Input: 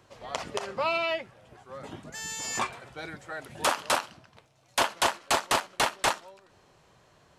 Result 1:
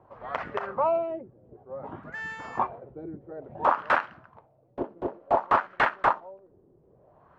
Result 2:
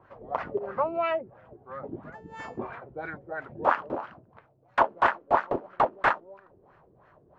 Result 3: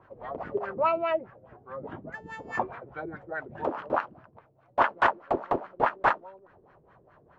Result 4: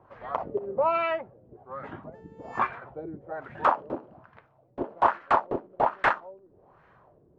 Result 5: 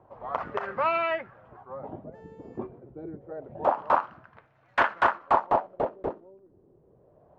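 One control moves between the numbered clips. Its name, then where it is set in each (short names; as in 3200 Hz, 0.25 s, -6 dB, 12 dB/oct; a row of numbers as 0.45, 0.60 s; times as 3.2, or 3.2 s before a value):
LFO low-pass, rate: 0.56, 3, 4.8, 1.2, 0.27 Hz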